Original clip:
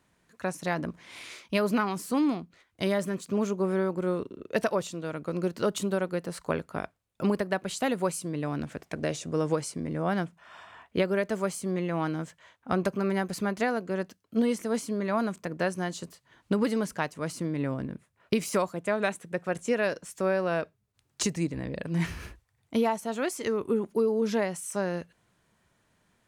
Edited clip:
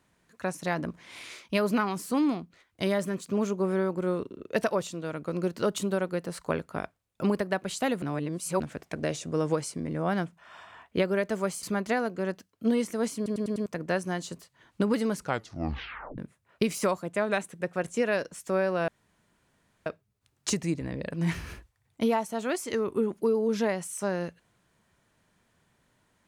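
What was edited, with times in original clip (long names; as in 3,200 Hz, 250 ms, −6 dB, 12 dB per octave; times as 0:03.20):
0:08.02–0:08.60: reverse
0:11.63–0:13.34: remove
0:14.87: stutter in place 0.10 s, 5 plays
0:16.86: tape stop 1.03 s
0:20.59: splice in room tone 0.98 s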